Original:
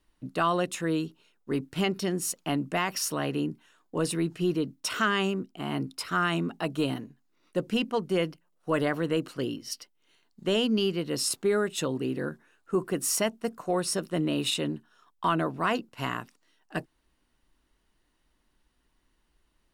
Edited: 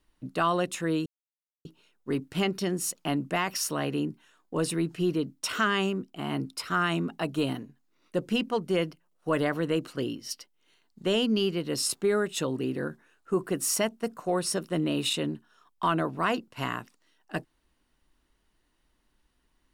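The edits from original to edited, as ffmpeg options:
-filter_complex "[0:a]asplit=2[a][b];[a]atrim=end=1.06,asetpts=PTS-STARTPTS,afade=t=out:st=1.056:d=0.004:c=hsin,apad=pad_dur=0.59[c];[b]atrim=start=1.06,asetpts=PTS-STARTPTS,afade=t=in:d=0.004:c=hsin[d];[c][d]concat=n=2:v=0:a=1"

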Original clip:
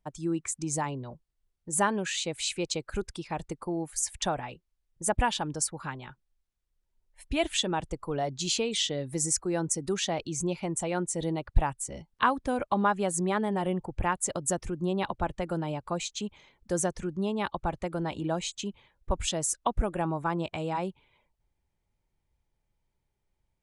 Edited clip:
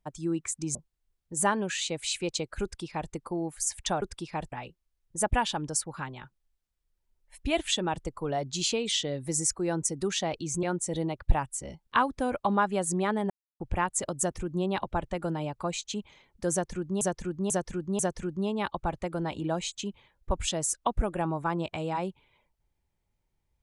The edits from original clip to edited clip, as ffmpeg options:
-filter_complex "[0:a]asplit=10[a][b][c][d][e][f][g][h][i][j];[a]atrim=end=0.752[k];[b]atrim=start=1.108:end=4.382[l];[c]atrim=start=2.988:end=3.492[m];[d]atrim=start=4.378:end=10.492[n];[e]atrim=start=10.898:end=13.57,asetpts=PTS-STARTPTS,afade=t=out:st=2.668:d=0.004:c=hsin[o];[f]atrim=start=13.57:end=13.87,asetpts=PTS-STARTPTS,volume=0[p];[g]atrim=start=13.87:end=17.282,asetpts=PTS-STARTPTS,afade=t=in:d=0.004:c=hsin[q];[h]atrim=start=16.788:end=17.282[r];[i]atrim=start=16.788:end=17.282[s];[j]atrim=start=16.788[t];[k][l]acrossfade=d=0.004:c1=hsin:c2=hsin[u];[u][m]acrossfade=d=0.004:c1=hsin:c2=hsin[v];[v][n]acrossfade=d=0.004:c1=hsin:c2=hsin[w];[o][p][q]concat=n=3:v=0:a=1[x];[w][x]acrossfade=d=0.004:c1=hsin:c2=hsin[y];[y][r]acrossfade=d=0.004:c1=hsin:c2=hsin[z];[z][s]acrossfade=d=0.004:c1=hsin:c2=hsin[aa];[aa][t]acrossfade=d=0.004:c1=hsin:c2=hsin"

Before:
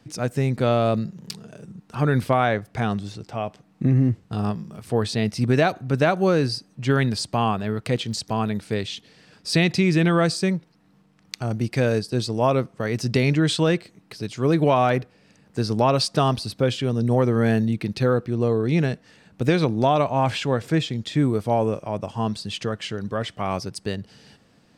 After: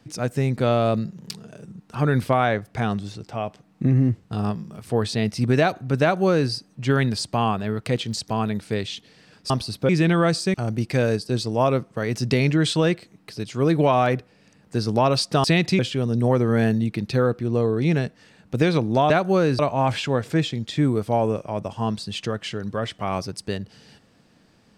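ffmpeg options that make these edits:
-filter_complex "[0:a]asplit=8[a][b][c][d][e][f][g][h];[a]atrim=end=9.502[i];[b]atrim=start=16.268:end=16.662[j];[c]atrim=start=9.848:end=10.502[k];[d]atrim=start=11.368:end=16.272[l];[e]atrim=start=9.498:end=9.852[m];[f]atrim=start=16.658:end=19.972[n];[g]atrim=start=6.018:end=6.512[o];[h]atrim=start=19.968[p];[i][j]acrossfade=d=0.004:c1=hsin:c2=hsin[q];[q][k]acrossfade=d=0.004:c1=hsin:c2=hsin[r];[r][l]acrossfade=d=0.004:c1=hsin:c2=hsin[s];[s][m]acrossfade=d=0.004:c1=hsin:c2=hsin[t];[t][n]acrossfade=d=0.004:c1=hsin:c2=hsin[u];[u][o]acrossfade=d=0.004:c1=hsin:c2=hsin[v];[v][p]acrossfade=d=0.004:c1=hsin:c2=hsin"

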